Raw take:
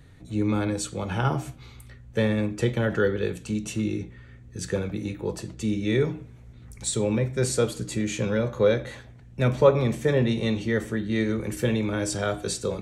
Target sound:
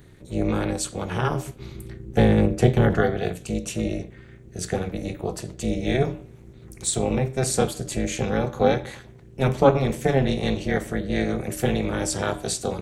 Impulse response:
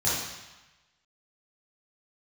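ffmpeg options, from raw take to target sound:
-filter_complex "[0:a]asettb=1/sr,asplit=3[a][b][c];[a]atrim=end=1.594[d];[b]atrim=start=1.59:end=3.01,asetpts=PTS-STARTPTS,afade=t=in:d=0.004:c=qsin,afade=t=out:st=1.416:d=0.004:c=qsin,lowshelf=f=340:g=8.5[e];[c]atrim=start=3.006[f];[d][e]acrossfade=d=0.004:c1=hsin:c2=qsin[g];[g][f]acrossfade=d=0.004:c1=qsin:c2=hsin,tremolo=f=270:d=0.947,highshelf=f=10k:g=8.5,volume=5dB"

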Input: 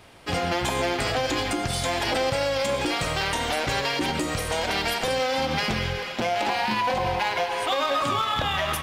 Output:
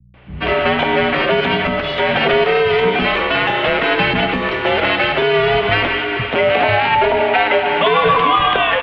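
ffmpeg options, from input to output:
-filter_complex "[0:a]aemphasis=mode=production:type=50kf,dynaudnorm=f=170:g=3:m=9.5dB,aeval=exprs='val(0)+0.0158*(sin(2*PI*60*n/s)+sin(2*PI*2*60*n/s)/2+sin(2*PI*3*60*n/s)/3+sin(2*PI*4*60*n/s)/4+sin(2*PI*5*60*n/s)/5)':c=same,highpass=f=200:t=q:w=0.5412,highpass=f=200:t=q:w=1.307,lowpass=f=3.1k:t=q:w=0.5176,lowpass=f=3.1k:t=q:w=0.7071,lowpass=f=3.1k:t=q:w=1.932,afreqshift=-110,acrossover=split=180[a][b];[b]adelay=140[c];[a][c]amix=inputs=2:normalize=0,volume=2.5dB"

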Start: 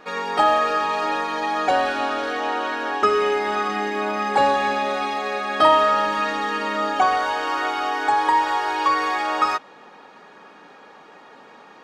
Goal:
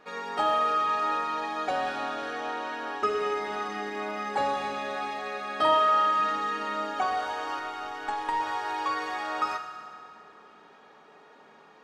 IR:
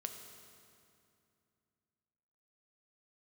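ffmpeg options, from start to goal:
-filter_complex "[0:a]asettb=1/sr,asplit=3[a][b][c];[a]atrim=end=5.754[d];[b]atrim=start=5.75:end=6.2,asetpts=PTS-STARTPTS,afade=t=in:d=0.004:c=qsin,afade=t=out:st=0.446:d=0.004:c=qsin,highpass=240[e];[c]atrim=start=6.196[f];[d][e]acrossfade=d=0.004:c1=hsin:c2=qsin[g];[g][f]acrossfade=d=0.004:c1=qsin:c2=hsin,asettb=1/sr,asplit=3[h][i][j];[h]atrim=end=7.594[k];[i]atrim=start=7.59:end=8.4,asetpts=PTS-STARTPTS,afade=t=in:d=0.004:c=qsin,afade=t=out:st=0.806:d=0.004:c=qsin,aeval=exprs='0.447*(cos(1*acos(clip(val(0)/0.447,-1,1)))-cos(1*PI/2))+0.0562*(cos(3*acos(clip(val(0)/0.447,-1,1)))-cos(3*PI/2))+0.0158*(cos(4*acos(clip(val(0)/0.447,-1,1)))-cos(4*PI/2))':c=same[l];[j]atrim=start=8.396[m];[k][l]acrossfade=d=0.004:c1=hsin:c2=qsin[n];[n][m]acrossfade=d=0.004:c1=qsin:c2=hsin[o];[1:a]atrim=start_sample=2205[p];[o][p]afir=irnorm=-1:irlink=0,volume=-6.5dB"

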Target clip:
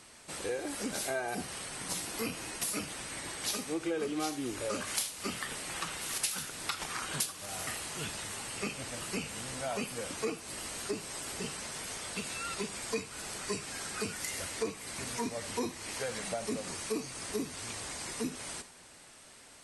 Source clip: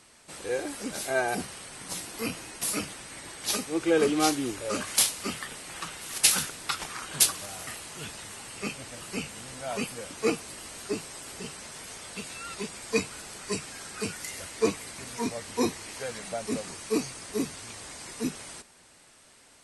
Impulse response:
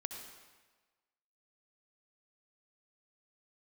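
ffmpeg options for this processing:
-filter_complex "[0:a]acompressor=threshold=-34dB:ratio=5,asplit=2[a][b];[1:a]atrim=start_sample=2205,atrim=end_sample=3969[c];[b][c]afir=irnorm=-1:irlink=0,volume=4dB[d];[a][d]amix=inputs=2:normalize=0,volume=-5dB"

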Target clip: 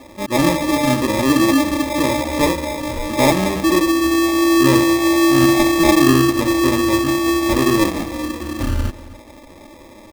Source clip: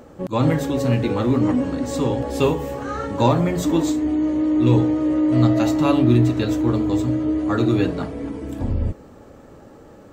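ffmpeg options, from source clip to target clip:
-filter_complex "[0:a]lowpass=f=3.1k:w=0.5412,lowpass=f=3.1k:w=1.3066,aecho=1:1:3.7:0.56,asetrate=48091,aresample=44100,atempo=0.917004,acrusher=samples=30:mix=1:aa=0.000001,asplit=2[a][b];[b]adelay=262.4,volume=-19dB,highshelf=f=4k:g=-5.9[c];[a][c]amix=inputs=2:normalize=0,volume=1.5dB"

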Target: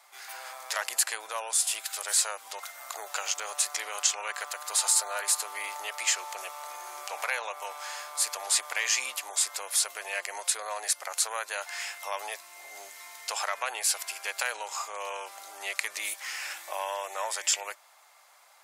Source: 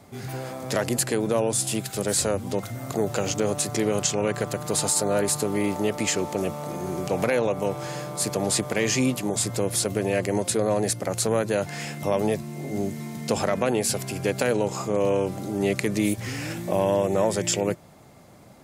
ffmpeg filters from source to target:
-af "highpass=f=900:w=0.5412,highpass=f=900:w=1.3066"

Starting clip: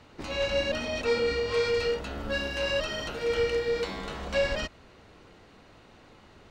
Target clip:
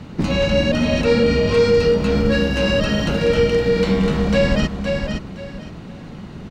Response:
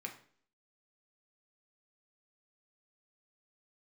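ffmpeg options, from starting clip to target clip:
-filter_complex "[0:a]equalizer=f=180:w=1.4:g=14.5,aecho=1:1:516|1032|1548:0.398|0.0876|0.0193,asplit=2[a][b];[b]alimiter=limit=-23dB:level=0:latency=1:release=394,volume=1.5dB[c];[a][c]amix=inputs=2:normalize=0,lowshelf=f=240:g=7,volume=3dB"

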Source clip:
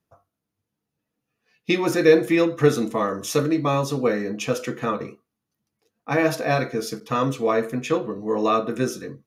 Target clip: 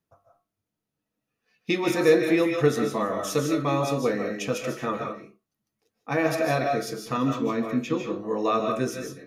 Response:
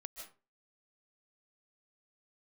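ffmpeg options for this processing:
-filter_complex "[0:a]asettb=1/sr,asplit=3[a][b][c];[a]atrim=end=7.174[d];[b]atrim=start=7.17:end=8.01,asetpts=PTS-STARTPTS,afade=t=in:d=0.004:c=qsin,afade=t=out:st=0.836:d=0.004:c=qsin,equalizer=f=250:t=o:w=0.67:g=7,equalizer=f=630:t=o:w=0.67:g=-10,equalizer=f=1.6k:t=o:w=0.67:g=-5,equalizer=f=10k:t=o:w=0.67:g=-12[e];[c]atrim=start=8.006[f];[d][e]acrossfade=d=0.004:c1=hsin:c2=qsin[g];[g][f]acrossfade=d=0.004:c1=qsin:c2=hsin[h];[1:a]atrim=start_sample=2205,afade=t=out:st=0.29:d=0.01,atrim=end_sample=13230[i];[h][i]afir=irnorm=-1:irlink=0,volume=2dB"

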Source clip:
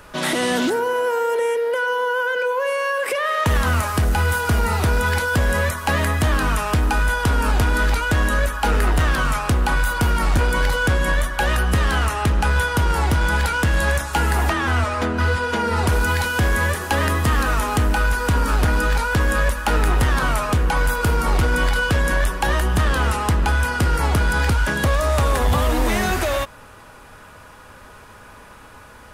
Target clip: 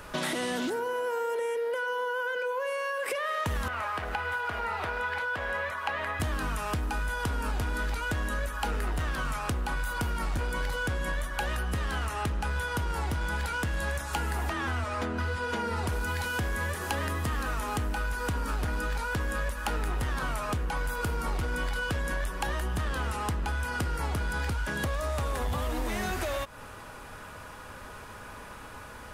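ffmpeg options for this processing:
-filter_complex "[0:a]asettb=1/sr,asplit=3[a][b][c];[a]atrim=end=3.684[d];[b]atrim=start=3.68:end=6.2,asetpts=PTS-STARTPTS,afade=t=in:d=0.004:c=qsin,afade=t=out:st=2.516:d=0.004:c=qsin,acrossover=split=490 3400:gain=0.141 1 0.112[e][f][g];[e][f][g]amix=inputs=3:normalize=0[h];[c]atrim=start=6.196[i];[d][h]acrossfade=d=0.004:c1=hsin:c2=qsin[j];[j][i]acrossfade=d=0.004:c1=qsin:c2=hsin,acompressor=threshold=-28dB:ratio=6,volume=-1dB"

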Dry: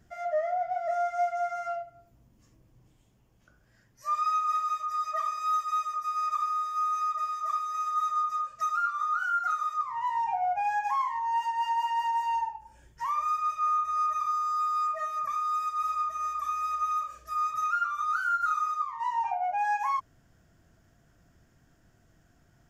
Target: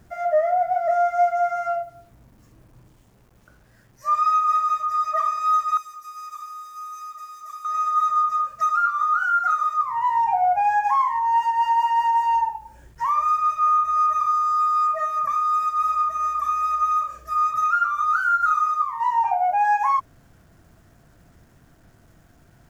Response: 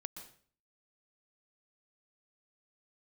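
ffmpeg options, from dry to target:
-filter_complex "[0:a]asettb=1/sr,asplit=3[a][b][c];[a]atrim=end=5.774[d];[b]atrim=start=5.77:end=7.65,asetpts=PTS-STARTPTS,afade=t=in:d=0.004:c=qsin,afade=t=out:st=1.876:d=0.004:c=qsin,aderivative[e];[c]atrim=start=7.646[f];[d][e]acrossfade=d=0.004:c1=hsin:c2=qsin[g];[g][f]acrossfade=d=0.004:c1=qsin:c2=hsin,acrusher=bits=10:mix=0:aa=0.000001,asplit=2[h][i];[1:a]atrim=start_sample=2205,atrim=end_sample=4410,lowpass=2.1k[j];[i][j]afir=irnorm=-1:irlink=0,volume=3.5dB[k];[h][k]amix=inputs=2:normalize=0,volume=3.5dB"

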